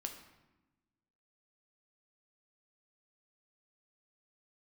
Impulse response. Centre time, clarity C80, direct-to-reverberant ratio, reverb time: 20 ms, 10.5 dB, 4.0 dB, 1.1 s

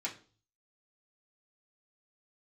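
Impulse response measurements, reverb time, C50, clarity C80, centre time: 0.40 s, 12.5 dB, 17.5 dB, 14 ms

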